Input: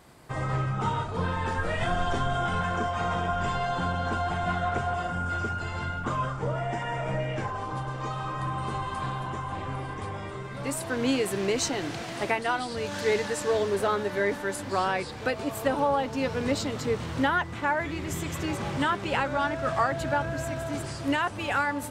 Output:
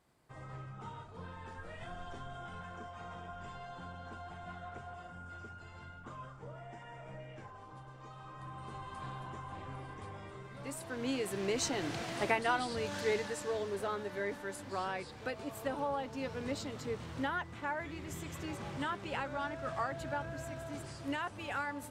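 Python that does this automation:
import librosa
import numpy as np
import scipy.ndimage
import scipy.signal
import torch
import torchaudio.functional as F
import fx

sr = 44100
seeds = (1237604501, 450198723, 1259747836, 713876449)

y = fx.gain(x, sr, db=fx.line((8.07, -18.5), (9.14, -11.5), (10.91, -11.5), (11.97, -4.0), (12.69, -4.0), (13.55, -11.0)))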